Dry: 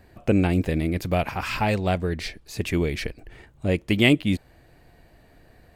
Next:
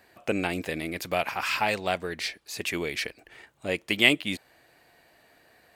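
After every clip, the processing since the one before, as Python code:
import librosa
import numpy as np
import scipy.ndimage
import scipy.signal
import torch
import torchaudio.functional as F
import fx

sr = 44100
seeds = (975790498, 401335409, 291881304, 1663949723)

y = fx.highpass(x, sr, hz=980.0, slope=6)
y = y * 10.0 ** (2.5 / 20.0)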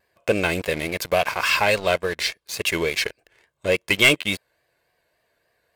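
y = x + 0.51 * np.pad(x, (int(1.9 * sr / 1000.0), 0))[:len(x)]
y = fx.leveller(y, sr, passes=3)
y = fx.vibrato(y, sr, rate_hz=3.5, depth_cents=64.0)
y = y * 10.0 ** (-4.5 / 20.0)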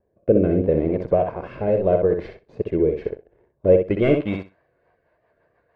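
y = fx.echo_feedback(x, sr, ms=63, feedback_pct=15, wet_db=-6)
y = fx.rotary_switch(y, sr, hz=0.8, then_hz=6.7, switch_at_s=4.36)
y = fx.filter_sweep_lowpass(y, sr, from_hz=460.0, to_hz=1200.0, start_s=3.53, end_s=4.58, q=1.0)
y = y * 10.0 ** (7.5 / 20.0)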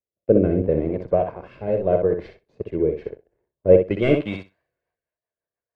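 y = fx.band_widen(x, sr, depth_pct=70)
y = y * 10.0 ** (-1.5 / 20.0)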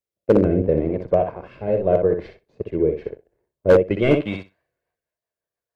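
y = np.clip(x, -10.0 ** (-8.5 / 20.0), 10.0 ** (-8.5 / 20.0))
y = y * 10.0 ** (1.5 / 20.0)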